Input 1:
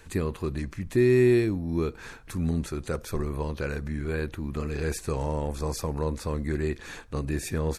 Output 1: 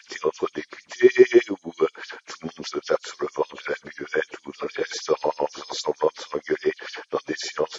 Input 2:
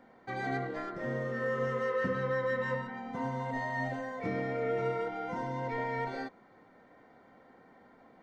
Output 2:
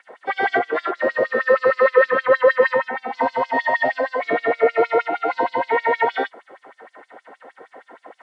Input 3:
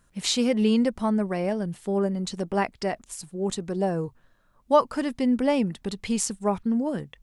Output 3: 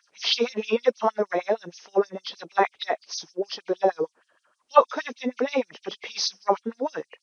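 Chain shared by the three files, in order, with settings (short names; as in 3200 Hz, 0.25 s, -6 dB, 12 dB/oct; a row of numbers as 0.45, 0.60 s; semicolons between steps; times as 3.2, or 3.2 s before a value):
nonlinear frequency compression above 2100 Hz 1.5:1; LFO high-pass sine 6.4 Hz 380–5700 Hz; normalise peaks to -1.5 dBFS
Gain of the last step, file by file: +6.0, +15.0, +2.0 dB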